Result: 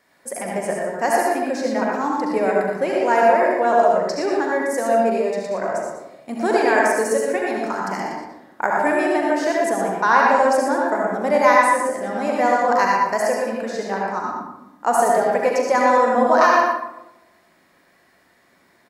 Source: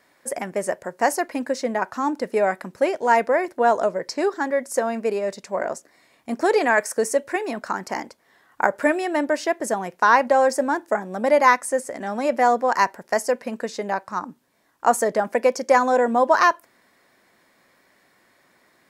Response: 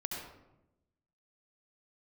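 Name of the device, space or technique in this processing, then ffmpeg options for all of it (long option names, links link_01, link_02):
bathroom: -filter_complex "[0:a]aecho=1:1:40.82|119.5:0.251|0.398[link_01];[1:a]atrim=start_sample=2205[link_02];[link_01][link_02]afir=irnorm=-1:irlink=0"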